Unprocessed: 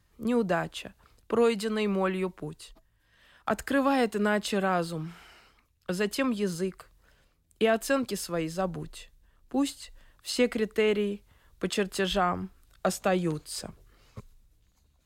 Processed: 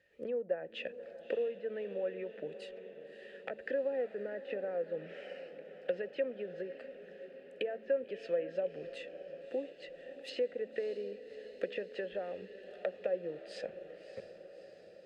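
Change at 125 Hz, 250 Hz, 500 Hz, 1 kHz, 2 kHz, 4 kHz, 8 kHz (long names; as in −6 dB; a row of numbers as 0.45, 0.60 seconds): −22.0 dB, −19.0 dB, −6.0 dB, −20.0 dB, −13.0 dB, −15.0 dB, below −25 dB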